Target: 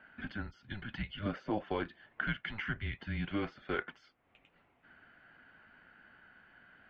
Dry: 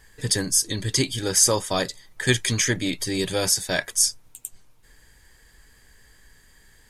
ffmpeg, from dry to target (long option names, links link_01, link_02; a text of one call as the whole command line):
ffmpeg -i in.wav -filter_complex "[0:a]acompressor=threshold=-33dB:ratio=3,highpass=frequency=290:width_type=q:width=0.5412,highpass=frequency=290:width_type=q:width=1.307,lowpass=frequency=2900:width_type=q:width=0.5176,lowpass=frequency=2900:width_type=q:width=0.7071,lowpass=frequency=2900:width_type=q:width=1.932,afreqshift=-210,asettb=1/sr,asplit=3[link_01][link_02][link_03];[link_01]atrim=end=1.194[link_04];[link_02]atrim=start=1.19:end=1.64,asetpts=PTS-STARTPTS,afade=type=in:duration=0.004:curve=qsin,afade=type=out:start_time=0.446:duration=0.004:curve=qsin,equalizer=frequency=530:width=3.5:gain=14.5[link_05];[link_03]atrim=start=1.636[link_06];[link_04][link_05]acrossfade=duration=0.004:curve1=hsin:curve2=qsin[link_07];[link_07][link_06]acrossfade=duration=0.004:curve1=qsin:curve2=hsin" out.wav